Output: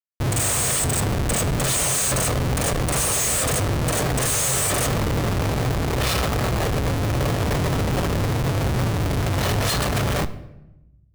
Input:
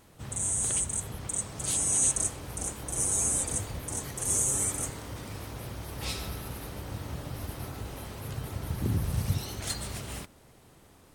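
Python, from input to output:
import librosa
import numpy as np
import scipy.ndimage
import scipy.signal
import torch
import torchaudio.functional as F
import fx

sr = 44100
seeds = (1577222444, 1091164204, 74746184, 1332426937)

p1 = fx.highpass(x, sr, hz=110.0, slope=6)
p2 = fx.high_shelf(p1, sr, hz=3200.0, db=-4.0)
p3 = p2 + 0.8 * np.pad(p2, (int(1.7 * sr / 1000.0), 0))[:len(p2)]
p4 = fx.rider(p3, sr, range_db=4, speed_s=2.0)
p5 = p3 + (p4 * librosa.db_to_amplitude(-2.5))
p6 = fx.schmitt(p5, sr, flips_db=-33.0)
p7 = fx.room_shoebox(p6, sr, seeds[0], volume_m3=360.0, walls='mixed', distance_m=0.31)
y = p7 * librosa.db_to_amplitude(6.5)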